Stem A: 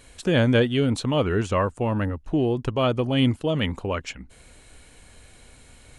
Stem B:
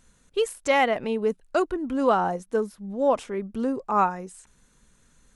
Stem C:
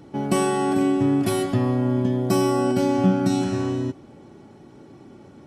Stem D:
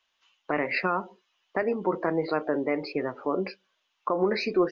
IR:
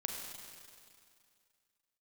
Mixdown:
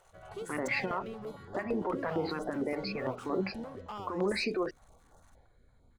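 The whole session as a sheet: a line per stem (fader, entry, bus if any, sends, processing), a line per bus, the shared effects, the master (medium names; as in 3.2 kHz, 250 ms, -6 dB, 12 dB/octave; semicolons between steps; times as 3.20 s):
-12.0 dB, 0.15 s, bus A, no send, compression, threshold -29 dBFS, peak gain reduction 13.5 dB
-15.0 dB, 0.00 s, no bus, no send, compression 6:1, threshold -31 dBFS, peak gain reduction 14.5 dB; waveshaping leveller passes 3
-3.5 dB, 0.00 s, bus A, no send, spectral gate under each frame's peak -15 dB weak
+0.5 dB, 0.00 s, no bus, no send, level-controlled noise filter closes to 2.4 kHz; peak limiter -22.5 dBFS, peak gain reduction 8 dB
bus A: 0.0 dB, boxcar filter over 16 samples; compression 6:1, threshold -44 dBFS, peak gain reduction 12 dB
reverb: none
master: step-sequenced notch 8.8 Hz 230–2400 Hz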